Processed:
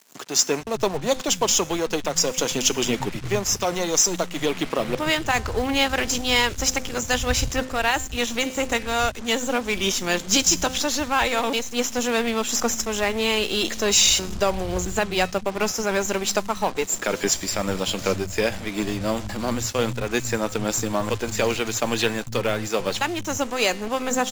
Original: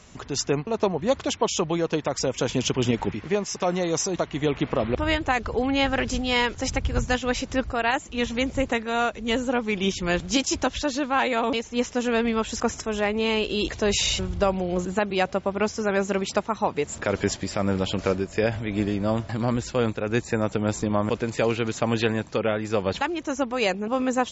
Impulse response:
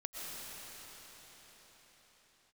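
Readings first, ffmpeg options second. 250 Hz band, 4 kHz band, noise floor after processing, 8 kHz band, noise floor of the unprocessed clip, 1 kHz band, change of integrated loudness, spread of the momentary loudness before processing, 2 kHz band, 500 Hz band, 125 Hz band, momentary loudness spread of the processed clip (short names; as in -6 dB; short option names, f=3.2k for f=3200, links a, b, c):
-1.5 dB, +6.0 dB, -35 dBFS, n/a, -43 dBFS, +1.0 dB, +2.5 dB, 4 LU, +3.0 dB, 0.0 dB, -2.5 dB, 6 LU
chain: -filter_complex "[0:a]aemphasis=mode=production:type=75kf,bandreject=f=258.1:t=h:w=4,bandreject=f=516.2:t=h:w=4,bandreject=f=774.3:t=h:w=4,bandreject=f=1.0324k:t=h:w=4,bandreject=f=1.2905k:t=h:w=4,bandreject=f=1.5486k:t=h:w=4,bandreject=f=1.8067k:t=h:w=4,bandreject=f=2.0648k:t=h:w=4,bandreject=f=2.3229k:t=h:w=4,bandreject=f=2.581k:t=h:w=4,bandreject=f=2.8391k:t=h:w=4,bandreject=f=3.0972k:t=h:w=4,bandreject=f=3.3553k:t=h:w=4,bandreject=f=3.6134k:t=h:w=4,bandreject=f=3.8715k:t=h:w=4,bandreject=f=4.1296k:t=h:w=4,bandreject=f=4.3877k:t=h:w=4,bandreject=f=4.6458k:t=h:w=4,bandreject=f=4.9039k:t=h:w=4,bandreject=f=5.162k:t=h:w=4,bandreject=f=5.4201k:t=h:w=4,bandreject=f=5.6782k:t=h:w=4,bandreject=f=5.9363k:t=h:w=4,bandreject=f=6.1944k:t=h:w=4,bandreject=f=6.4525k:t=h:w=4,bandreject=f=6.7106k:t=h:w=4,bandreject=f=6.9687k:t=h:w=4,bandreject=f=7.2268k:t=h:w=4,bandreject=f=7.4849k:t=h:w=4,bandreject=f=7.743k:t=h:w=4,bandreject=f=8.0011k:t=h:w=4,bandreject=f=8.2592k:t=h:w=4,bandreject=f=8.5173k:t=h:w=4,bandreject=f=8.7754k:t=h:w=4,aeval=exprs='0.355*(cos(1*acos(clip(val(0)/0.355,-1,1)))-cos(1*PI/2))+0.0251*(cos(8*acos(clip(val(0)/0.355,-1,1)))-cos(8*PI/2))':c=same,acrusher=bits=5:mix=0:aa=0.5,acrossover=split=160[a][b];[a]adelay=450[c];[c][b]amix=inputs=2:normalize=0"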